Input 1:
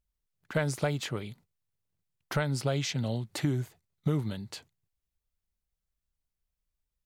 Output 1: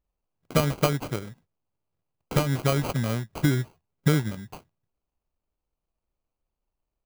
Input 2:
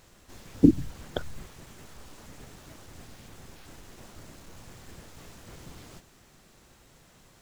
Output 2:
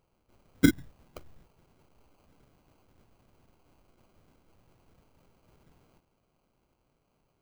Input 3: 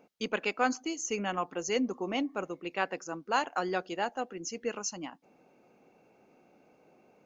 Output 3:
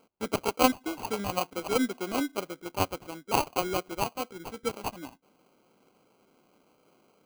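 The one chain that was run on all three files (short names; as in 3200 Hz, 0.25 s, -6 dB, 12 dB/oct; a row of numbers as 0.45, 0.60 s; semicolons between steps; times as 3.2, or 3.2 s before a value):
sample-rate reducer 1800 Hz, jitter 0%; upward expander 1.5:1, over -38 dBFS; normalise peaks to -9 dBFS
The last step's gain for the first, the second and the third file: +8.0, -3.5, +5.5 dB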